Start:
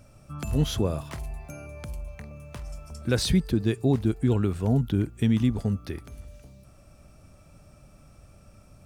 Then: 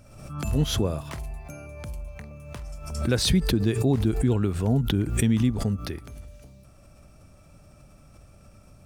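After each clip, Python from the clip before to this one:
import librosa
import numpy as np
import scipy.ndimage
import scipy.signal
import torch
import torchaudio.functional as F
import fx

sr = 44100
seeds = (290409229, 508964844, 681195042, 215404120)

y = fx.pre_swell(x, sr, db_per_s=59.0)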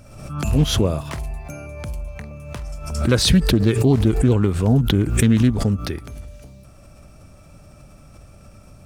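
y = fx.doppler_dist(x, sr, depth_ms=0.25)
y = F.gain(torch.from_numpy(y), 6.5).numpy()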